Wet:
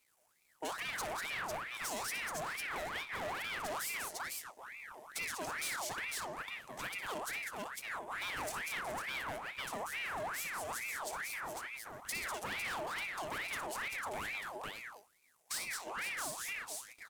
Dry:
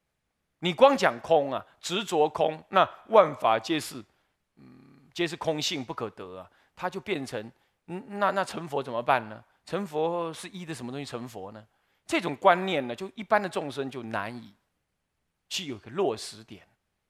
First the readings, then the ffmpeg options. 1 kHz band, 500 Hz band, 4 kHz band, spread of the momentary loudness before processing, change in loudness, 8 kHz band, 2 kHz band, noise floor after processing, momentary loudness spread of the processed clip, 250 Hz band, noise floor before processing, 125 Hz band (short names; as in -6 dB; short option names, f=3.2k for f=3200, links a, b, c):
-13.0 dB, -19.0 dB, -8.5 dB, 19 LU, -12.0 dB, +1.0 dB, -3.5 dB, -72 dBFS, 6 LU, -19.5 dB, -80 dBFS, -16.0 dB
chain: -filter_complex "[0:a]aeval=exprs='if(lt(val(0),0),0.251*val(0),val(0))':c=same,aemphasis=mode=reproduction:type=cd,asplit=2[a][b];[b]aecho=0:1:59|193|500:0.299|0.422|0.398[c];[a][c]amix=inputs=2:normalize=0,aexciter=amount=9.9:drive=2.6:freq=5.8k,alimiter=limit=-16dB:level=0:latency=1,asoftclip=type=tanh:threshold=-31dB,equalizer=f=620:t=o:w=0.67:g=-11.5,acompressor=threshold=-47dB:ratio=2.5,aeval=exprs='val(0)*sin(2*PI*1500*n/s+1500*0.6/2.3*sin(2*PI*2.3*n/s))':c=same,volume=8dB"